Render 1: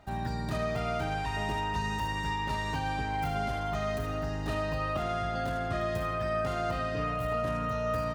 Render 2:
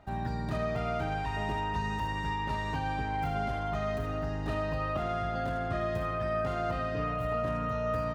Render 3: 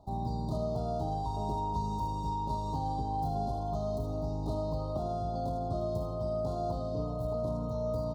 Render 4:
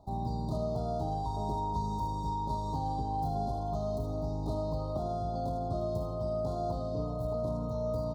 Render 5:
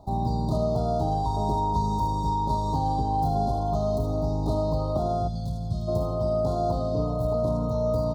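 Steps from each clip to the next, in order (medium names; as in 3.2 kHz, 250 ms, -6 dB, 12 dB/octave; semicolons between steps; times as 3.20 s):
treble shelf 3.8 kHz -9.5 dB
elliptic band-stop 980–4100 Hz, stop band 80 dB
band-stop 2.8 kHz, Q 5.3
time-frequency box 5.28–5.88 s, 220–1800 Hz -16 dB; trim +8 dB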